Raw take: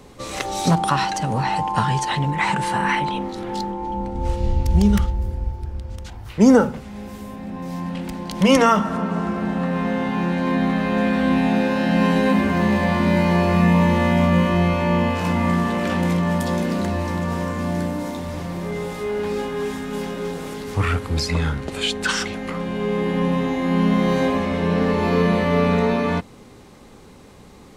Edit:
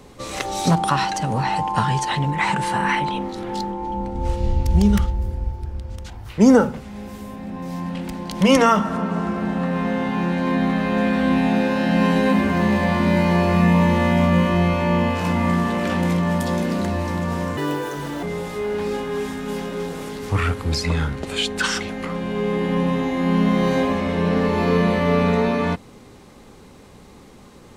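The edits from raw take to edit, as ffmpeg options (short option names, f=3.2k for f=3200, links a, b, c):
-filter_complex "[0:a]asplit=3[a][b][c];[a]atrim=end=17.574[d];[b]atrim=start=17.57:end=18.68,asetpts=PTS-STARTPTS,asetrate=74088,aresample=44100[e];[c]atrim=start=18.676[f];[d][e]acrossfade=d=0.004:c1=hsin:c2=hsin[g];[g][f]acrossfade=d=0.004:c1=hsin:c2=hsin"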